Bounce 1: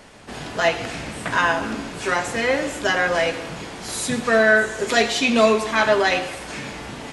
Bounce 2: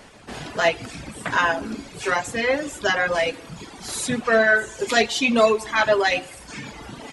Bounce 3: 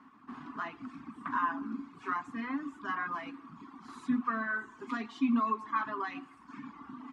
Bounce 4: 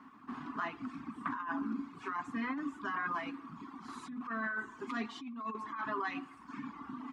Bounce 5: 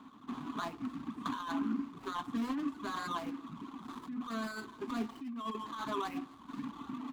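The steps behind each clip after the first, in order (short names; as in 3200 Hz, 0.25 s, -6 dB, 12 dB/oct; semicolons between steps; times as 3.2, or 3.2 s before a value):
reverb removal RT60 1.5 s
limiter -11.5 dBFS, peak gain reduction 7 dB; double band-pass 540 Hz, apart 2.1 oct
negative-ratio compressor -36 dBFS, ratio -1; gain -1 dB
median filter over 25 samples; gain +3 dB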